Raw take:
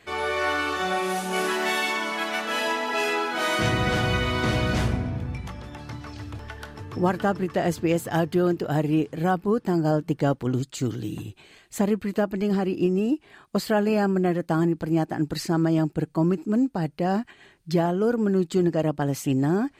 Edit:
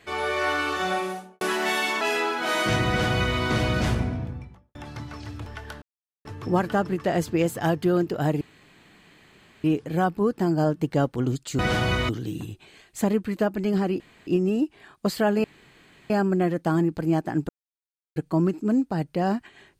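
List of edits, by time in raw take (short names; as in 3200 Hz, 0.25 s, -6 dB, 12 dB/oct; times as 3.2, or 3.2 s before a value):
0.9–1.41 studio fade out
2.01–2.94 cut
3.81–4.31 copy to 10.86
4.99–5.68 studio fade out
6.75 insert silence 0.43 s
8.91 insert room tone 1.23 s
12.77 insert room tone 0.27 s
13.94 insert room tone 0.66 s
15.33–16 mute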